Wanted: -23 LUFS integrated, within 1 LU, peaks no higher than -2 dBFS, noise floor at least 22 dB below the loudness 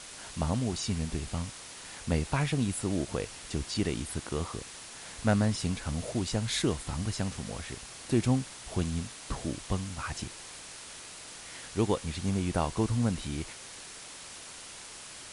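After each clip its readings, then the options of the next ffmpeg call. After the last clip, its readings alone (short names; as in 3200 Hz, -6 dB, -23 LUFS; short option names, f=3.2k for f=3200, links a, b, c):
noise floor -46 dBFS; noise floor target -55 dBFS; loudness -33.0 LUFS; peak -13.5 dBFS; loudness target -23.0 LUFS
-> -af "afftdn=nr=9:nf=-46"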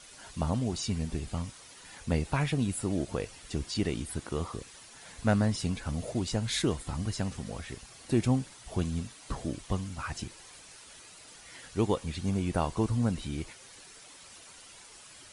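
noise floor -52 dBFS; noise floor target -55 dBFS
-> -af "afftdn=nr=6:nf=-52"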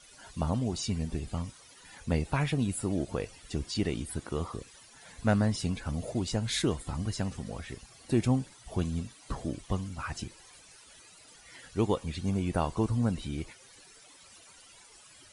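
noise floor -56 dBFS; loudness -32.5 LUFS; peak -13.5 dBFS; loudness target -23.0 LUFS
-> -af "volume=9.5dB"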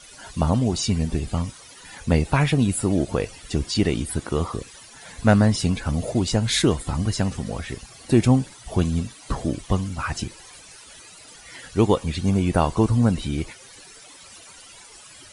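loudness -23.0 LUFS; peak -4.0 dBFS; noise floor -46 dBFS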